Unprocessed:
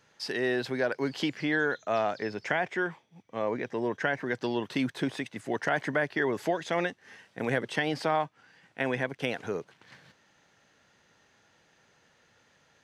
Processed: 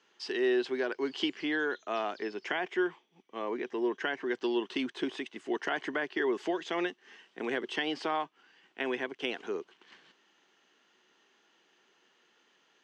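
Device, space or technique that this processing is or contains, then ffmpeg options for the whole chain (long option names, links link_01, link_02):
television speaker: -af "highpass=frequency=220:width=0.5412,highpass=frequency=220:width=1.3066,equalizer=frequency=370:width_type=q:width=4:gain=9,equalizer=frequency=560:width_type=q:width=4:gain=-6,equalizer=frequency=1100:width_type=q:width=4:gain=4,equalizer=frequency=3000:width_type=q:width=4:gain=9,lowpass=frequency=7700:width=0.5412,lowpass=frequency=7700:width=1.3066,volume=-5dB"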